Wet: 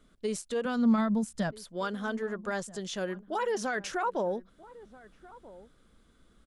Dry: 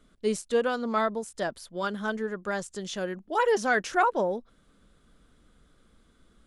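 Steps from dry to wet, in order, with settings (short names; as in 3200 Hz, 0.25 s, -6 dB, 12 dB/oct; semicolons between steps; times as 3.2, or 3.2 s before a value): limiter -21.5 dBFS, peak gain reduction 9.5 dB; 0.65–1.51 resonant low shelf 270 Hz +7.5 dB, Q 3; outdoor echo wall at 220 m, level -19 dB; gain -1.5 dB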